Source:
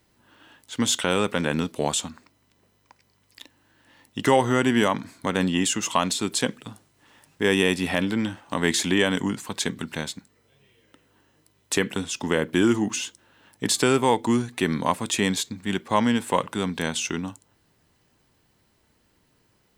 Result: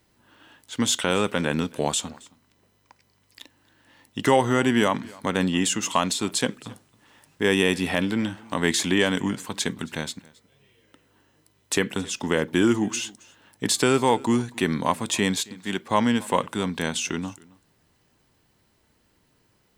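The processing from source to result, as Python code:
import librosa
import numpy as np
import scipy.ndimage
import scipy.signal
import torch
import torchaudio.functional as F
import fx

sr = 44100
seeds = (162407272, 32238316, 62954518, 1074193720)

p1 = fx.highpass(x, sr, hz=fx.line((15.44, 590.0), (15.85, 140.0)), slope=6, at=(15.44, 15.85), fade=0.02)
y = p1 + fx.echo_single(p1, sr, ms=271, db=-23.5, dry=0)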